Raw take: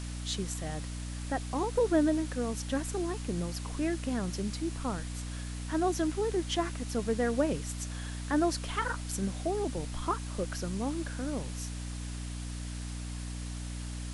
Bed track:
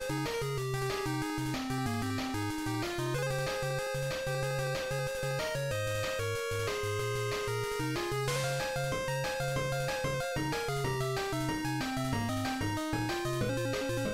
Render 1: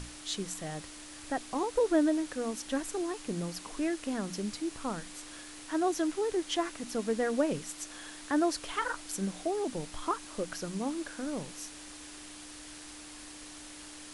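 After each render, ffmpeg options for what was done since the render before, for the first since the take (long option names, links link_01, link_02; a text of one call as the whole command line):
ffmpeg -i in.wav -af "bandreject=frequency=60:width_type=h:width=6,bandreject=frequency=120:width_type=h:width=6,bandreject=frequency=180:width_type=h:width=6,bandreject=frequency=240:width_type=h:width=6" out.wav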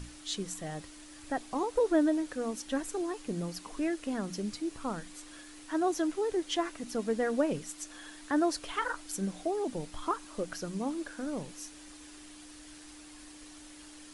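ffmpeg -i in.wav -af "afftdn=noise_reduction=6:noise_floor=-48" out.wav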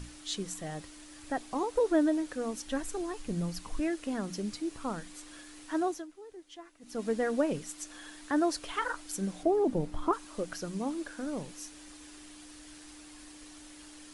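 ffmpeg -i in.wav -filter_complex "[0:a]asettb=1/sr,asplit=3[link_01][link_02][link_03];[link_01]atrim=end=2.364[link_04];[link_02]atrim=start=2.36:end=3.8,asetpts=PTS-STARTPTS,afade=type=in:duration=0.004:curve=qsin,afade=type=out:start_time=1.436:duration=0.004:curve=qsin,asubboost=boost=10.5:cutoff=140[link_05];[link_03]atrim=start=3.796[link_06];[link_04][link_05]acrossfade=duration=0.004:curve1=hsin:curve2=qsin[link_07];[link_07][link_06]acrossfade=duration=0.004:curve1=qsin:curve2=hsin,asettb=1/sr,asplit=3[link_08][link_09][link_10];[link_08]atrim=end=9.434[link_11];[link_09]atrim=start=9.43:end=10.13,asetpts=PTS-STARTPTS,afade=type=in:duration=0.004:curve=qsin,afade=type=out:start_time=0.696:duration=0.004:curve=qsin,tiltshelf=frequency=1300:gain=7.5[link_12];[link_10]atrim=start=10.126[link_13];[link_11][link_12]acrossfade=duration=0.004:curve1=hsin:curve2=qsin[link_14];[link_14][link_13]acrossfade=duration=0.004:curve1=qsin:curve2=hsin,asplit=3[link_15][link_16][link_17];[link_15]atrim=end=6.06,asetpts=PTS-STARTPTS,afade=type=out:start_time=5.8:duration=0.26:silence=0.133352[link_18];[link_16]atrim=start=6.06:end=6.8,asetpts=PTS-STARTPTS,volume=-17.5dB[link_19];[link_17]atrim=start=6.8,asetpts=PTS-STARTPTS,afade=type=in:duration=0.26:silence=0.133352[link_20];[link_18][link_19][link_20]concat=n=3:v=0:a=1" out.wav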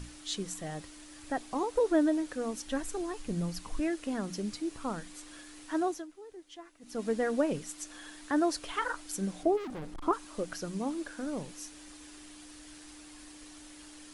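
ffmpeg -i in.wav -filter_complex "[0:a]asplit=3[link_01][link_02][link_03];[link_01]afade=type=out:start_time=9.56:duration=0.02[link_04];[link_02]asoftclip=type=hard:threshold=-38dB,afade=type=in:start_time=9.56:duration=0.02,afade=type=out:start_time=10.03:duration=0.02[link_05];[link_03]afade=type=in:start_time=10.03:duration=0.02[link_06];[link_04][link_05][link_06]amix=inputs=3:normalize=0" out.wav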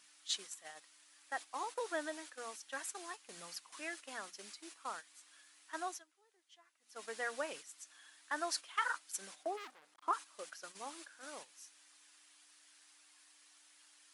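ffmpeg -i in.wav -af "agate=range=-11dB:threshold=-37dB:ratio=16:detection=peak,highpass=1100" out.wav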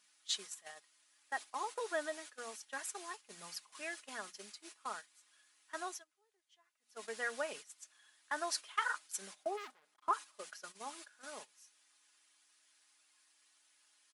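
ffmpeg -i in.wav -af "agate=range=-7dB:threshold=-52dB:ratio=16:detection=peak,aecho=1:1:4.8:0.41" out.wav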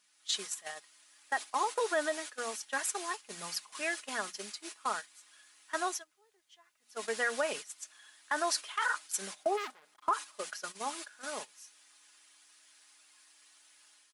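ffmpeg -i in.wav -af "dynaudnorm=framelen=100:gausssize=5:maxgain=9dB,alimiter=limit=-20.5dB:level=0:latency=1:release=51" out.wav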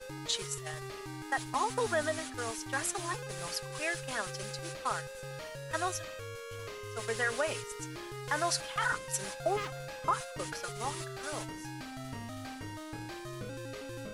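ffmpeg -i in.wav -i bed.wav -filter_complex "[1:a]volume=-9.5dB[link_01];[0:a][link_01]amix=inputs=2:normalize=0" out.wav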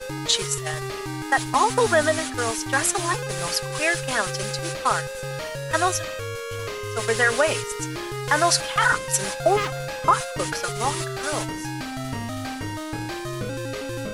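ffmpeg -i in.wav -af "volume=12dB" out.wav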